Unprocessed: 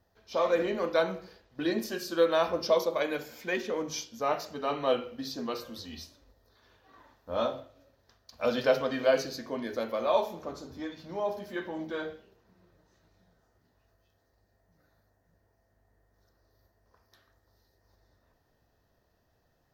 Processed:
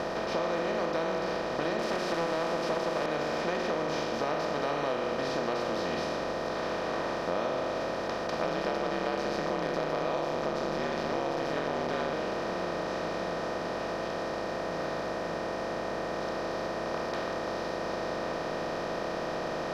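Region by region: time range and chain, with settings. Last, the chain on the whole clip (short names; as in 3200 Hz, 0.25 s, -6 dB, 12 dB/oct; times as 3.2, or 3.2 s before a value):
1.79–3.06 switching spikes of -25.5 dBFS + HPF 190 Hz 24 dB/oct + Doppler distortion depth 0.5 ms
8.44–12.13 low shelf 130 Hz +11.5 dB + ring modulator 71 Hz
whole clip: per-bin compression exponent 0.2; LPF 4300 Hz 12 dB/oct; compressor, threshold -20 dBFS; gain -6.5 dB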